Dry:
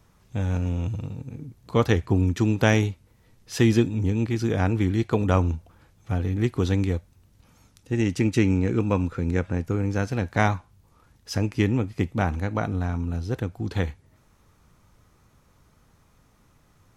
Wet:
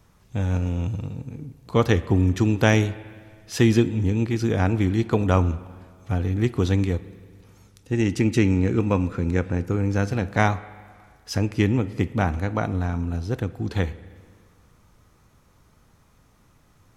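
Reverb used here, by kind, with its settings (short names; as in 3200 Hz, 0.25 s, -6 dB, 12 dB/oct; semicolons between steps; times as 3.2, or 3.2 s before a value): spring tank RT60 1.9 s, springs 40/54 ms, chirp 25 ms, DRR 16 dB; gain +1.5 dB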